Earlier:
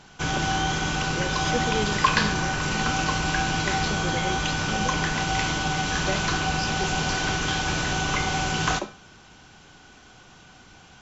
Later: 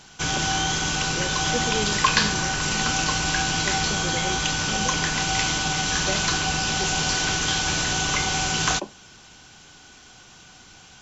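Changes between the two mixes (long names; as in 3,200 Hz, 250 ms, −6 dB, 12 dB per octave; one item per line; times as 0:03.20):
background: add high-shelf EQ 3,400 Hz +11.5 dB
reverb: off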